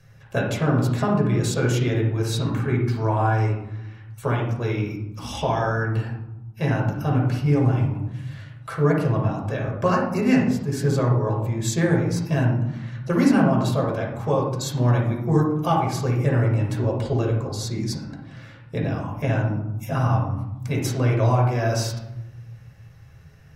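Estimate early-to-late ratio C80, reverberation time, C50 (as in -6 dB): 7.0 dB, 0.95 s, 3.0 dB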